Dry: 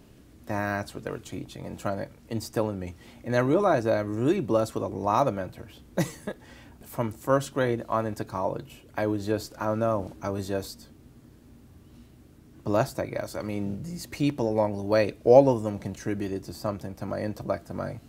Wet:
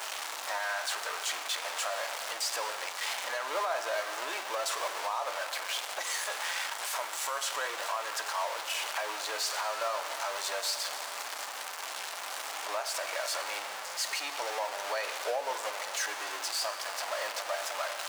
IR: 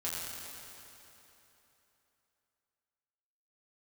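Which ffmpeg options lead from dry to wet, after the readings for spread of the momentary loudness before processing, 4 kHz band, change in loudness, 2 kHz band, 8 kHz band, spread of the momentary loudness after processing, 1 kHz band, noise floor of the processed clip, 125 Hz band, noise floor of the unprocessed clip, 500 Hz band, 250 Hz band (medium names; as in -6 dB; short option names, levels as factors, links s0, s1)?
14 LU, +11.0 dB, -5.5 dB, +4.0 dB, +10.5 dB, 4 LU, -2.0 dB, -40 dBFS, under -40 dB, -53 dBFS, -11.5 dB, -29.0 dB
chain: -filter_complex "[0:a]aeval=exprs='val(0)+0.5*0.0562*sgn(val(0))':c=same,highpass=f=750:w=0.5412,highpass=f=750:w=1.3066,acrossover=split=9300[s0][s1];[s1]acompressor=threshold=0.00562:ratio=4:attack=1:release=60[s2];[s0][s2]amix=inputs=2:normalize=0,alimiter=limit=0.0668:level=0:latency=1:release=133,asplit=2[s3][s4];[1:a]atrim=start_sample=2205[s5];[s4][s5]afir=irnorm=-1:irlink=0,volume=0.299[s6];[s3][s6]amix=inputs=2:normalize=0,volume=0.841"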